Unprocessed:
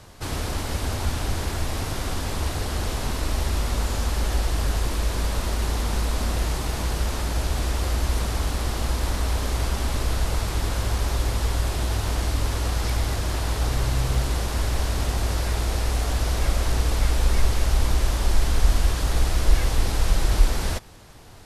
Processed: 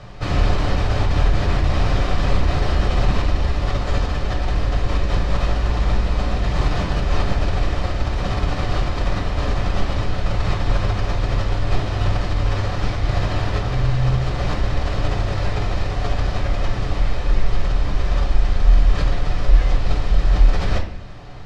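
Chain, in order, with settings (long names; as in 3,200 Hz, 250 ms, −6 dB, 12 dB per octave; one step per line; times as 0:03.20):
in parallel at 0 dB: compressor whose output falls as the input rises −26 dBFS, ratio −0.5
on the sum: high-frequency loss of the air 170 metres
convolution reverb RT60 0.50 s, pre-delay 6 ms, DRR 1.5 dB
level −3 dB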